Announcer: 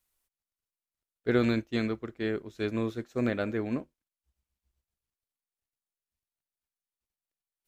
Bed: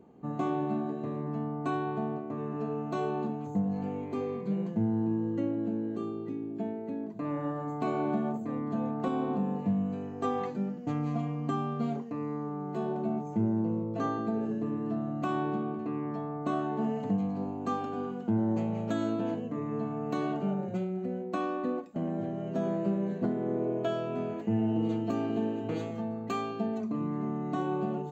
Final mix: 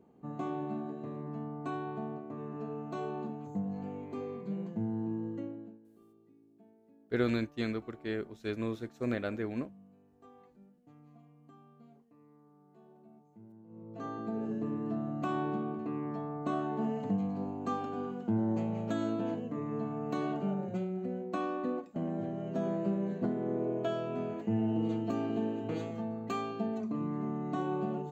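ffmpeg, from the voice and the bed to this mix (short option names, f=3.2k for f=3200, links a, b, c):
-filter_complex "[0:a]adelay=5850,volume=-4.5dB[a];[1:a]volume=18dB,afade=t=out:st=5.26:d=0.53:silence=0.0944061,afade=t=in:st=13.67:d=0.91:silence=0.0630957[b];[a][b]amix=inputs=2:normalize=0"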